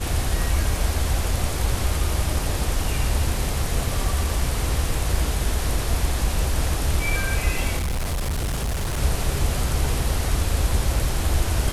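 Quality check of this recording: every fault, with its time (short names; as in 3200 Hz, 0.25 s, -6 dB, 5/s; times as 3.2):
7.77–8.99 clipped -21.5 dBFS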